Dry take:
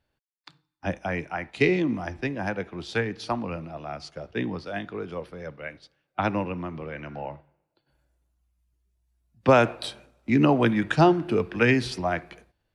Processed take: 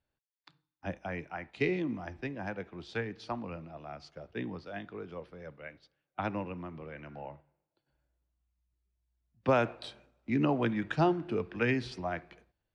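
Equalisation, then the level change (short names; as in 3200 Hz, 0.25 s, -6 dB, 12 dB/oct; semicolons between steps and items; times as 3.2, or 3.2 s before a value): air absorption 72 m; -8.5 dB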